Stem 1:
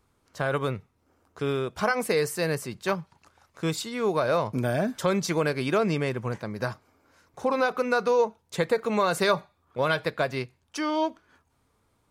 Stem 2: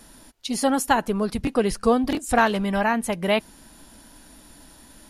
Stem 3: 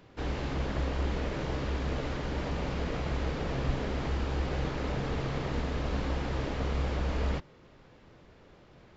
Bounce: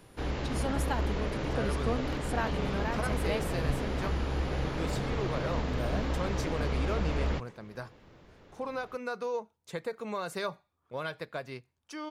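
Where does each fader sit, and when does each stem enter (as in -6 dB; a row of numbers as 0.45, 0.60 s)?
-11.5, -14.5, 0.0 dB; 1.15, 0.00, 0.00 s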